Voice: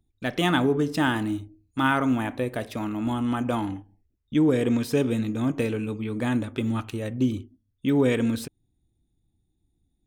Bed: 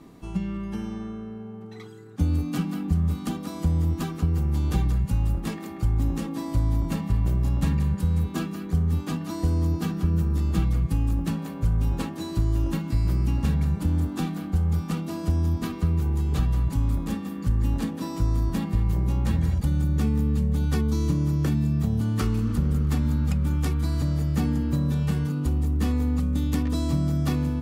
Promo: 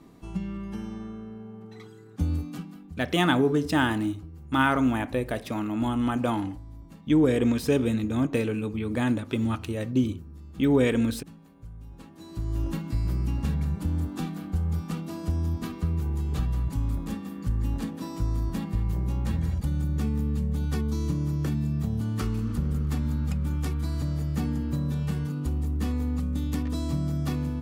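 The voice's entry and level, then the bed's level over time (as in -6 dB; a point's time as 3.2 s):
2.75 s, 0.0 dB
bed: 2.33 s -3.5 dB
2.97 s -20.5 dB
11.9 s -20.5 dB
12.6 s -4 dB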